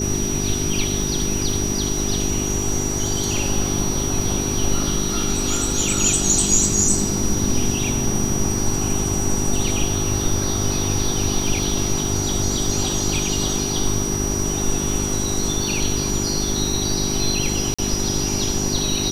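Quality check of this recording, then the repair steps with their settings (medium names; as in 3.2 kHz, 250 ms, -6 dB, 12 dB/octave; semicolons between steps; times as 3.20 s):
crackle 21 per s -27 dBFS
hum 50 Hz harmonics 8 -26 dBFS
whine 5.8 kHz -25 dBFS
17.74–17.79 s: dropout 45 ms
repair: de-click; de-hum 50 Hz, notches 8; band-stop 5.8 kHz, Q 30; interpolate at 17.74 s, 45 ms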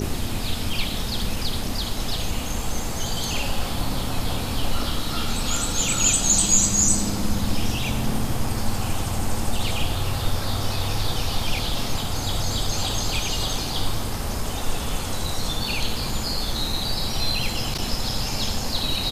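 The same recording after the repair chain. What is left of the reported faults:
nothing left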